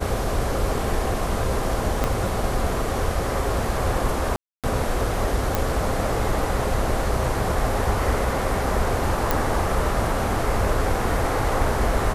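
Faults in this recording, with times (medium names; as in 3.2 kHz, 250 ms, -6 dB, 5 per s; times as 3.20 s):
2.04 s: pop -8 dBFS
4.36–4.64 s: dropout 277 ms
5.55 s: pop
9.31 s: pop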